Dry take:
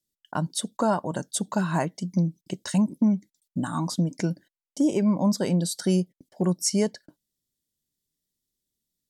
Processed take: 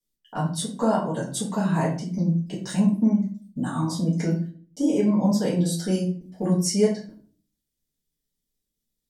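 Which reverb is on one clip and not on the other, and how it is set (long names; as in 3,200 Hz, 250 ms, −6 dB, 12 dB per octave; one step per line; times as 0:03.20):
rectangular room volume 35 cubic metres, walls mixed, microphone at 1.6 metres
level −8.5 dB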